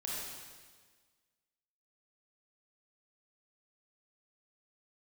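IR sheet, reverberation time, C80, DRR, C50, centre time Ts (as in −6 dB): 1.5 s, −0.5 dB, −5.5 dB, −3.5 dB, 114 ms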